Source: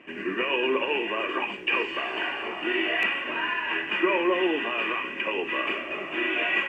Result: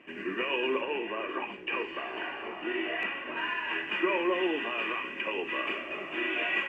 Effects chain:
0:00.81–0:03.37: high-shelf EQ 3,300 Hz −11.5 dB
level −4.5 dB

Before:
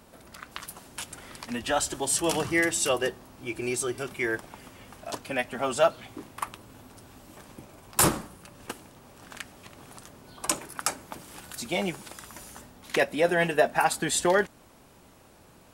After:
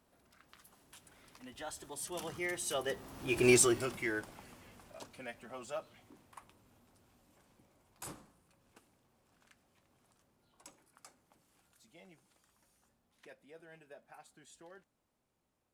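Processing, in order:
mu-law and A-law mismatch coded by mu
source passing by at 0:03.51, 18 m/s, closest 2.3 metres
level +4.5 dB

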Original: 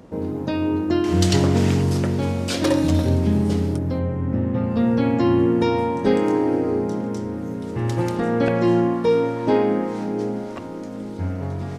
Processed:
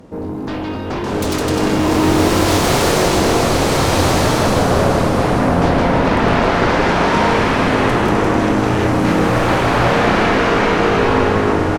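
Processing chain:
bouncing-ball delay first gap 160 ms, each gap 0.6×, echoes 5
sine wavefolder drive 16 dB, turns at −4 dBFS
slow-attack reverb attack 1,520 ms, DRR −8.5 dB
level −16 dB

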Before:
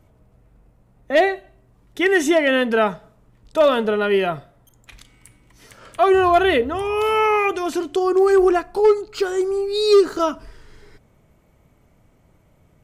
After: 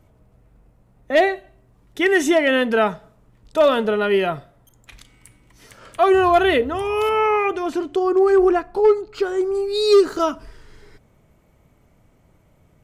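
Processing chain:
0:07.09–0:09.55: high-shelf EQ 3,700 Hz −10.5 dB

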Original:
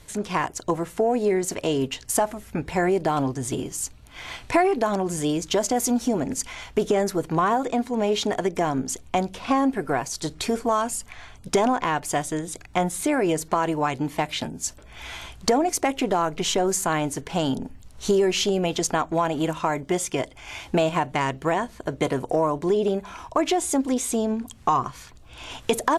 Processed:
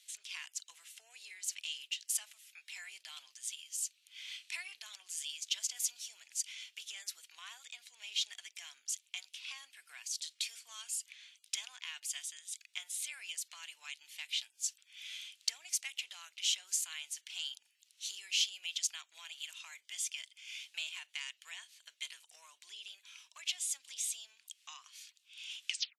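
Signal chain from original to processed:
turntable brake at the end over 0.32 s
Chebyshev high-pass filter 2,800 Hz, order 3
high-shelf EQ 9,300 Hz −7 dB
level −4 dB

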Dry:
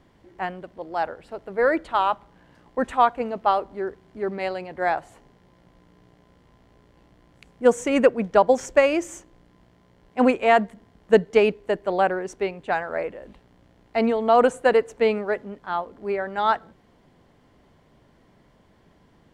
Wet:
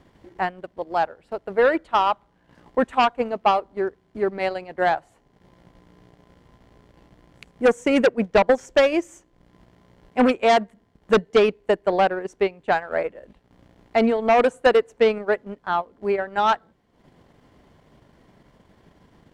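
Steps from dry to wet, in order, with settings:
harmonic generator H 5 −8 dB, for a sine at −3.5 dBFS
transient designer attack +3 dB, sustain −11 dB
level −6.5 dB

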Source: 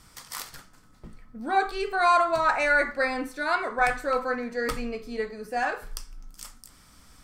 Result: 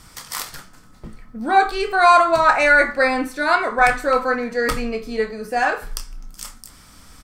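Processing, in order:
double-tracking delay 27 ms −12 dB
level +8 dB

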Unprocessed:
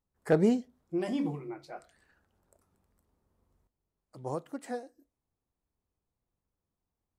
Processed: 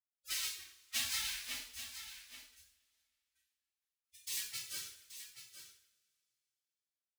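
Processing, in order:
sub-harmonics by changed cycles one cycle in 3, inverted
high-pass filter 91 Hz 6 dB per octave
noise gate with hold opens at −57 dBFS
gate on every frequency bin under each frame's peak −25 dB weak
downward compressor 4 to 1, threshold −44 dBFS, peak gain reduction 12.5 dB
gate pattern "xxxx.x.xxx" 130 BPM −60 dB
phase-vocoder pitch shift with formants kept +8 semitones
rotating-speaker cabinet horn 7 Hz, later 0.6 Hz, at 0:00.95
single-tap delay 829 ms −11 dB
coupled-rooms reverb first 0.52 s, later 2.8 s, from −26 dB, DRR −9.5 dB
level +7.5 dB

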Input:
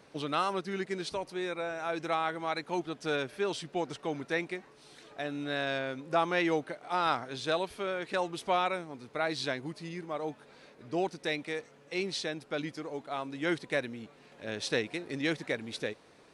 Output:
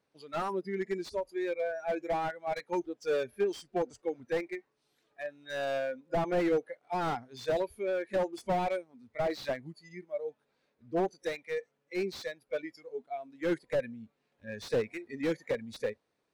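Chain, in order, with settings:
noise reduction from a noise print of the clip's start 20 dB
dynamic equaliser 570 Hz, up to +7 dB, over −46 dBFS, Q 1.2
slew-rate limiting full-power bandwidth 35 Hz
level −1 dB

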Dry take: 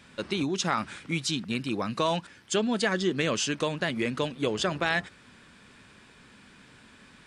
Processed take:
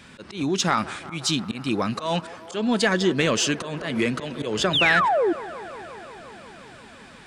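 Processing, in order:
0:04.73–0:05.33: sound drawn into the spectrogram fall 310–3,900 Hz −26 dBFS
volume swells 174 ms
in parallel at −9 dB: soft clipping −26 dBFS, distortion −11 dB
on the sum: delay with a band-pass on its return 177 ms, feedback 80%, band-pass 770 Hz, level −16 dB
0:03.81–0:04.75: multiband upward and downward compressor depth 40%
level +4 dB

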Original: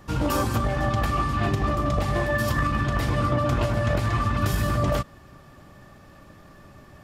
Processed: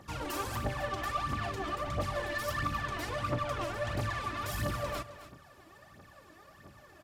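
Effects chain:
high-pass filter 92 Hz 12 dB per octave
parametric band 160 Hz −7 dB 2.2 octaves
soft clipping −27.5 dBFS, distortion −11 dB
phase shifter 1.5 Hz, delay 3.2 ms, feedback 66%
single-tap delay 264 ms −13.5 dB
level −6 dB

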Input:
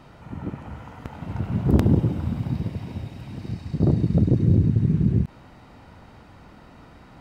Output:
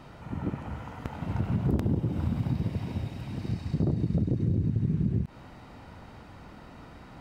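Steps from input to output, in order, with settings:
downward compressor 6 to 1, threshold −23 dBFS, peak gain reduction 11.5 dB

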